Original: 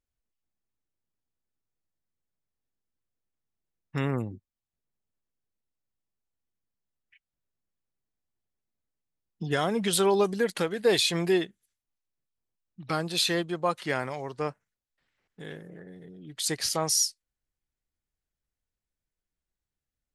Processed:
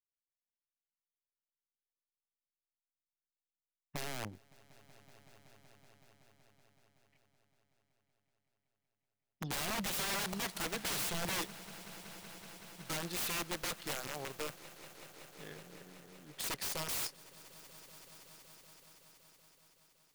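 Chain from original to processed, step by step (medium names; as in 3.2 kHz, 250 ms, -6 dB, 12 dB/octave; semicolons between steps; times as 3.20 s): integer overflow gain 25 dB; echo with a slow build-up 188 ms, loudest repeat 5, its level -18 dB; power-law waveshaper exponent 1.4; trim -4.5 dB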